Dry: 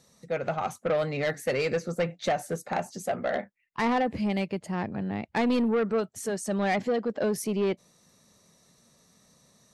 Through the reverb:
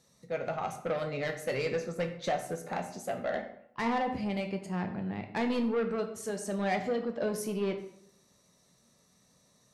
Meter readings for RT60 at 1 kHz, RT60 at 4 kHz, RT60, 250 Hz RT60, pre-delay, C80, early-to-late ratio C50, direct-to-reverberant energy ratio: 0.65 s, 0.50 s, 0.70 s, 0.75 s, 9 ms, 12.5 dB, 9.5 dB, 5.0 dB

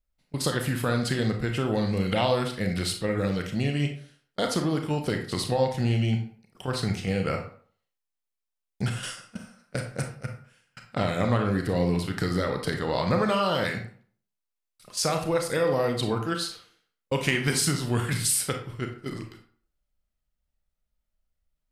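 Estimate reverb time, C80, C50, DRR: 0.50 s, 11.5 dB, 7.0 dB, 3.5 dB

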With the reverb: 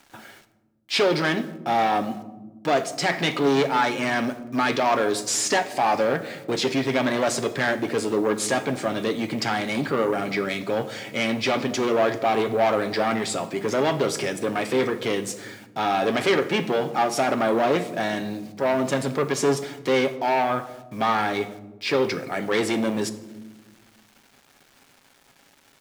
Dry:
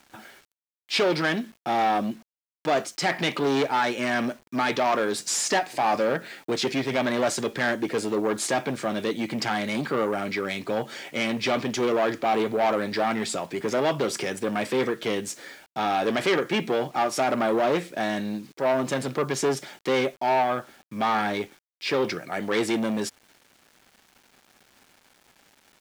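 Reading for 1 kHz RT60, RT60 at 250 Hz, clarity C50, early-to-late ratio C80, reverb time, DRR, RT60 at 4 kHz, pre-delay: 0.95 s, 2.2 s, 14.0 dB, 16.0 dB, 1.1 s, 9.0 dB, 0.60 s, 7 ms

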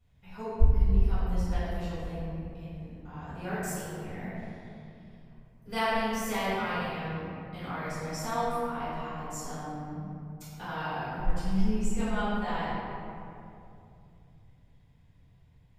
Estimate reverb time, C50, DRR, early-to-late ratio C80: 2.7 s, −4.5 dB, −13.5 dB, −2.0 dB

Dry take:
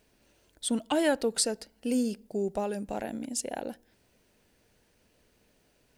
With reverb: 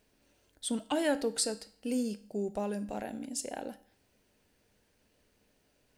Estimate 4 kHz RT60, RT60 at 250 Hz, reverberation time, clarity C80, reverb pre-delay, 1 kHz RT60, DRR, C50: 0.50 s, 0.50 s, 0.50 s, 20.0 dB, 4 ms, 0.50 s, 11.5 dB, 16.5 dB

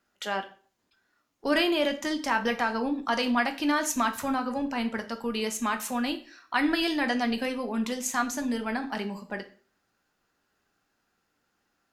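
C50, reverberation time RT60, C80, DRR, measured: 13.5 dB, 0.45 s, 18.0 dB, 5.5 dB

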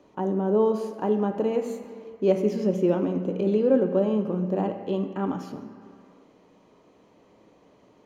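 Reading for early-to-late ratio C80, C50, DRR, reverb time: 9.5 dB, 8.5 dB, 6.0 dB, non-exponential decay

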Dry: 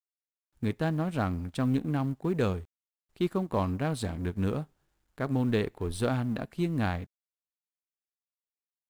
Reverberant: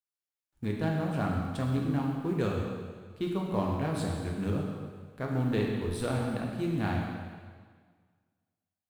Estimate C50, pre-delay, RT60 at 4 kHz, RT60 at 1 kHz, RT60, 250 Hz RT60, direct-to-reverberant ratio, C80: 1.5 dB, 5 ms, 1.6 s, 1.7 s, 1.7 s, 1.7 s, −1.5 dB, 3.0 dB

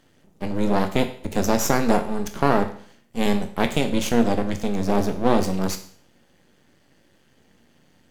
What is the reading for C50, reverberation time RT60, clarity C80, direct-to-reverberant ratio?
11.5 dB, 0.55 s, 14.5 dB, 6.5 dB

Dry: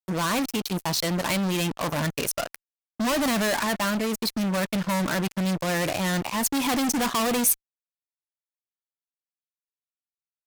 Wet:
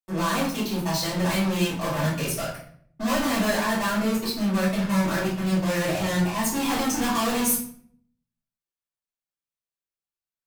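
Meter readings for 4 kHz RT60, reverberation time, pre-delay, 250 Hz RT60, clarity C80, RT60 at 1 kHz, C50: 0.45 s, 0.60 s, 3 ms, 0.85 s, 8.0 dB, 0.55 s, 4.0 dB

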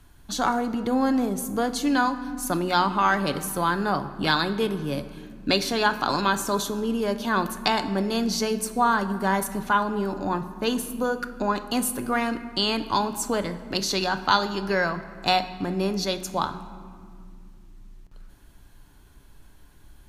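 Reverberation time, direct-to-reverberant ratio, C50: 2.4 s, 9.0 dB, 12.5 dB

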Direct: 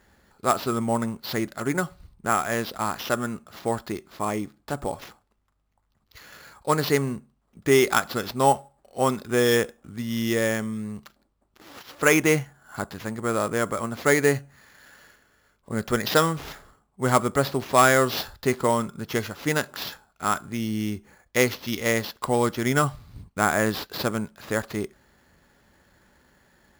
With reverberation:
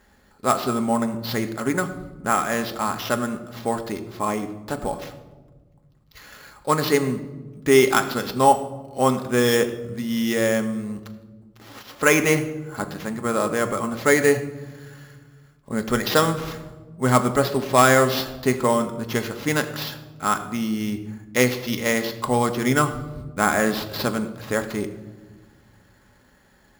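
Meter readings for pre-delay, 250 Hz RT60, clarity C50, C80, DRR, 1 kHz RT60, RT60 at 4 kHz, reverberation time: 4 ms, 2.2 s, 12.0 dB, 13.0 dB, 7.0 dB, 1.1 s, 0.70 s, 1.4 s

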